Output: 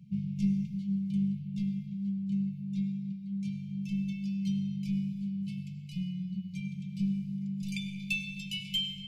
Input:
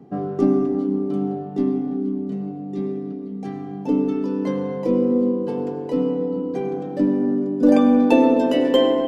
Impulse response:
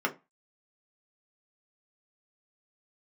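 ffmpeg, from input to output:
-af "afftfilt=real='re*(1-between(b*sr/4096,210,2100))':imag='im*(1-between(b*sr/4096,210,2100))':win_size=4096:overlap=0.75,aeval=exprs='0.141*(cos(1*acos(clip(val(0)/0.141,-1,1)))-cos(1*PI/2))+0.00316*(cos(2*acos(clip(val(0)/0.141,-1,1)))-cos(2*PI/2))':channel_layout=same,volume=-2dB"

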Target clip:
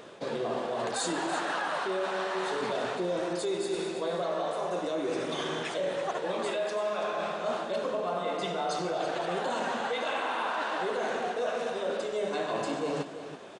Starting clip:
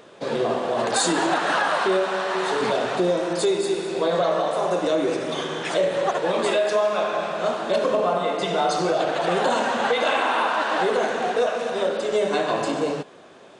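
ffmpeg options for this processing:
ffmpeg -i in.wav -af "areverse,acompressor=threshold=-29dB:ratio=6,areverse,aecho=1:1:331:0.282" out.wav

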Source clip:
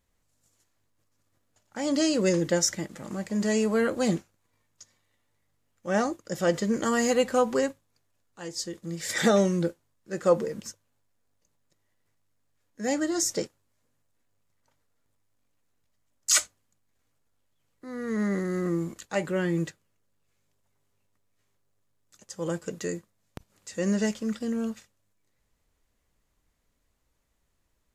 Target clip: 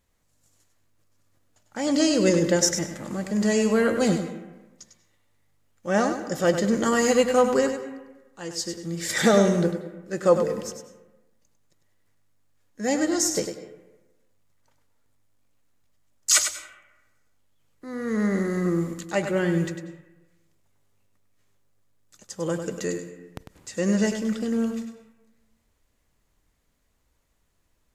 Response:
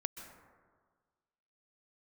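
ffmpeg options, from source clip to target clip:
-filter_complex "[0:a]asplit=2[link_01][link_02];[1:a]atrim=start_sample=2205,asetrate=66150,aresample=44100,adelay=100[link_03];[link_02][link_03]afir=irnorm=-1:irlink=0,volume=-3dB[link_04];[link_01][link_04]amix=inputs=2:normalize=0,volume=3dB"

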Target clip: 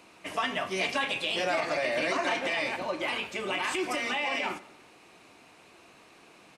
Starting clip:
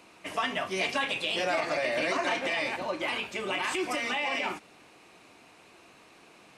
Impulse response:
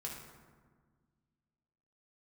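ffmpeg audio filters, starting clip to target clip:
-filter_complex "[0:a]asplit=2[link_01][link_02];[link_02]adelay=96,lowpass=frequency=3200:poles=1,volume=-18dB,asplit=2[link_03][link_04];[link_04]adelay=96,lowpass=frequency=3200:poles=1,volume=0.53,asplit=2[link_05][link_06];[link_06]adelay=96,lowpass=frequency=3200:poles=1,volume=0.53,asplit=2[link_07][link_08];[link_08]adelay=96,lowpass=frequency=3200:poles=1,volume=0.53[link_09];[link_01][link_03][link_05][link_07][link_09]amix=inputs=5:normalize=0"

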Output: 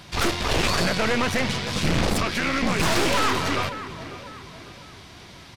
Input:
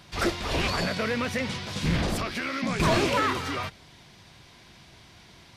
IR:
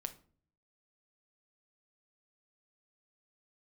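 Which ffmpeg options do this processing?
-filter_complex "[0:a]asplit=2[link_01][link_02];[link_02]adelay=548,lowpass=frequency=4500:poles=1,volume=-16dB,asplit=2[link_03][link_04];[link_04]adelay=548,lowpass=frequency=4500:poles=1,volume=0.43,asplit=2[link_05][link_06];[link_06]adelay=548,lowpass=frequency=4500:poles=1,volume=0.43,asplit=2[link_07][link_08];[link_08]adelay=548,lowpass=frequency=4500:poles=1,volume=0.43[link_09];[link_01][link_03][link_05][link_07][link_09]amix=inputs=5:normalize=0,aeval=exprs='0.2*(cos(1*acos(clip(val(0)/0.2,-1,1)))-cos(1*PI/2))+0.0891*(cos(5*acos(clip(val(0)/0.2,-1,1)))-cos(5*PI/2))+0.0794*(cos(6*acos(clip(val(0)/0.2,-1,1)))-cos(6*PI/2))':channel_layout=same,volume=-3.5dB"

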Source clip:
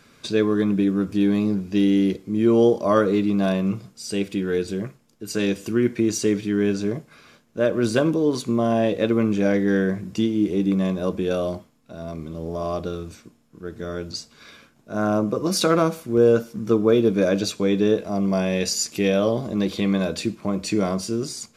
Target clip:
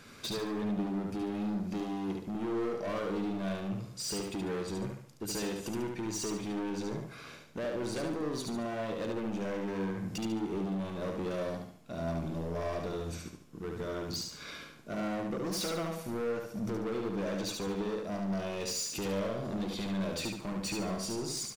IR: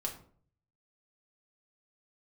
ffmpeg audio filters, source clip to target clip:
-filter_complex "[0:a]acompressor=threshold=-31dB:ratio=4,asoftclip=type=hard:threshold=-33.5dB,asplit=2[link_01][link_02];[link_02]aecho=0:1:72|144|216|288|360:0.668|0.261|0.102|0.0396|0.0155[link_03];[link_01][link_03]amix=inputs=2:normalize=0"

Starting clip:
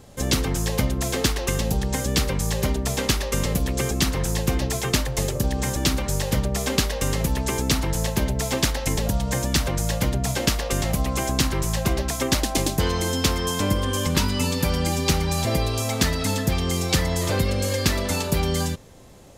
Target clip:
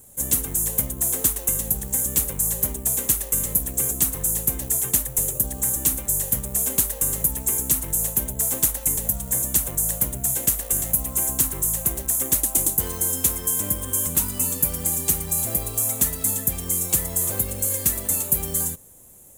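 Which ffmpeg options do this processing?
ffmpeg -i in.wav -filter_complex "[0:a]asplit=2[link_01][link_02];[link_02]acrusher=samples=23:mix=1:aa=0.000001:lfo=1:lforange=23:lforate=0.68,volume=-9.5dB[link_03];[link_01][link_03]amix=inputs=2:normalize=0,aexciter=amount=12.7:drive=7.6:freq=7300,volume=-11.5dB" out.wav

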